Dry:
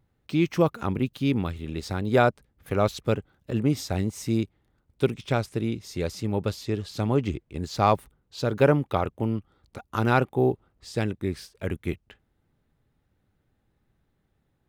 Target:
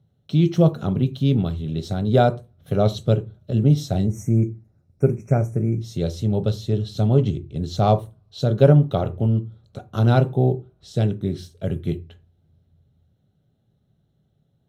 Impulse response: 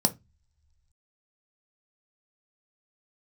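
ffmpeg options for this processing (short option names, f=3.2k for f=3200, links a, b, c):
-filter_complex "[0:a]asettb=1/sr,asplit=3[a][b][c];[a]atrim=end=4.064[d];[b]atrim=start=4.06:end=5.81,asetpts=PTS-STARTPTS,afade=t=in:d=0.004:c=qsin,afade=t=out:st=1.746:d=0.004:c=qsin,asuperstop=centerf=3800:order=20:qfactor=1.2[e];[c]atrim=start=5.806[f];[d][e]acrossfade=d=0.004:c1=hsin:c2=qsin[g];[g][f]acrossfade=d=0.004:c1=qsin:c2=hsin[h];[1:a]atrim=start_sample=2205,asetrate=31752,aresample=44100[i];[h][i]afir=irnorm=-1:irlink=0,volume=-13dB"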